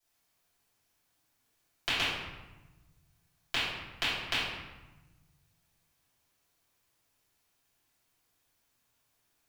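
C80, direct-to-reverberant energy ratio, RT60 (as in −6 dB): 2.0 dB, −13.5 dB, 1.1 s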